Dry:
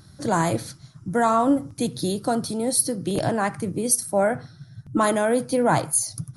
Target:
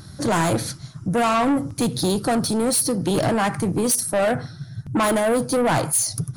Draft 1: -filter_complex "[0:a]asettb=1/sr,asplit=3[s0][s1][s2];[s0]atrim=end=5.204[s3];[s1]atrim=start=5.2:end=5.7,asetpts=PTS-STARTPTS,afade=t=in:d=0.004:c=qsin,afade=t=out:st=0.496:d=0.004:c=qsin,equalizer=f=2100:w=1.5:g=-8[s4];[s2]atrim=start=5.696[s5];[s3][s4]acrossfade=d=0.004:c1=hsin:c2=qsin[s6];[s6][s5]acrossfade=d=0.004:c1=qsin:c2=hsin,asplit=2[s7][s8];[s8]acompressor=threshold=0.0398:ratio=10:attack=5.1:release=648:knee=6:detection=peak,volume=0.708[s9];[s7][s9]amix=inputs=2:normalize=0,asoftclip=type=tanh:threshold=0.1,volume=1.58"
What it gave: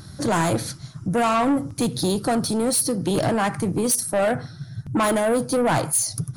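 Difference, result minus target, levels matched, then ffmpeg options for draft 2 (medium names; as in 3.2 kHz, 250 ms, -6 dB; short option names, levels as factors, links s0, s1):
compression: peak gain reduction +10.5 dB
-filter_complex "[0:a]asettb=1/sr,asplit=3[s0][s1][s2];[s0]atrim=end=5.204[s3];[s1]atrim=start=5.2:end=5.7,asetpts=PTS-STARTPTS,afade=t=in:d=0.004:c=qsin,afade=t=out:st=0.496:d=0.004:c=qsin,equalizer=f=2100:w=1.5:g=-8[s4];[s2]atrim=start=5.696[s5];[s3][s4]acrossfade=d=0.004:c1=hsin:c2=qsin[s6];[s6][s5]acrossfade=d=0.004:c1=qsin:c2=hsin,asplit=2[s7][s8];[s8]acompressor=threshold=0.15:ratio=10:attack=5.1:release=648:knee=6:detection=peak,volume=0.708[s9];[s7][s9]amix=inputs=2:normalize=0,asoftclip=type=tanh:threshold=0.1,volume=1.58"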